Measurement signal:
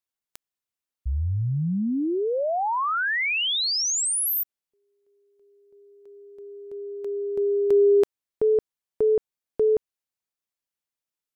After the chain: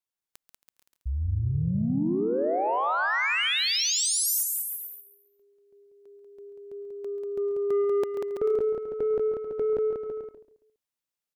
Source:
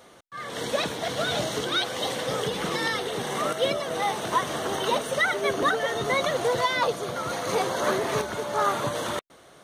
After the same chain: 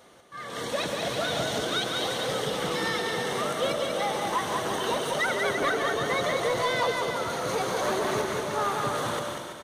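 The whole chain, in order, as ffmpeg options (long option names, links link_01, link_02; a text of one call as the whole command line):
ffmpeg -i in.wav -filter_complex "[0:a]asplit=2[link_01][link_02];[link_02]aecho=0:1:137|274|411:0.224|0.0761|0.0259[link_03];[link_01][link_03]amix=inputs=2:normalize=0,asoftclip=type=tanh:threshold=-17dB,asplit=2[link_04][link_05];[link_05]aecho=0:1:190|332.5|439.4|519.5|579.6:0.631|0.398|0.251|0.158|0.1[link_06];[link_04][link_06]amix=inputs=2:normalize=0,volume=-2.5dB" out.wav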